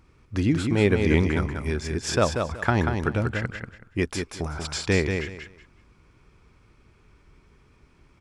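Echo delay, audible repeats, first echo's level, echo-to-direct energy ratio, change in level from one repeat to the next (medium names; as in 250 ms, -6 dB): 187 ms, 3, -5.5 dB, -5.5 dB, -13.0 dB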